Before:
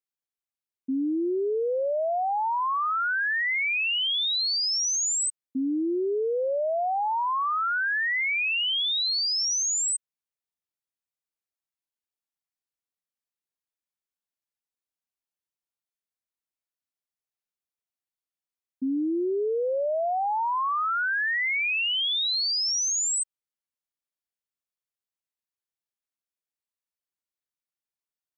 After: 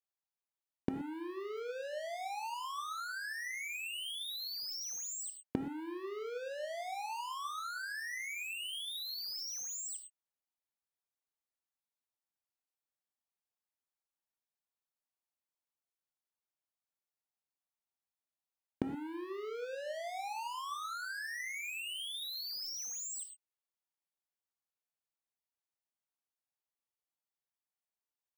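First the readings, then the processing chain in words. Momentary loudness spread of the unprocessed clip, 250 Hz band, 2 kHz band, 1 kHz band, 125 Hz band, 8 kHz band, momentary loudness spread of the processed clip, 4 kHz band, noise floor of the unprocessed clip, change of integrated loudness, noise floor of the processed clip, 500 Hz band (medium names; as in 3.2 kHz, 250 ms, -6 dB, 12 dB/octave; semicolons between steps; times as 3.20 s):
4 LU, -13.5 dB, -15.0 dB, -15.0 dB, no reading, -15.0 dB, 4 LU, -15.5 dB, under -85 dBFS, -15.0 dB, under -85 dBFS, -15.0 dB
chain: peaking EQ 830 Hz +7.5 dB 1.2 oct; waveshaping leveller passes 5; inverted gate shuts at -22 dBFS, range -27 dB; gated-style reverb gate 140 ms flat, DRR 6.5 dB; trim +2 dB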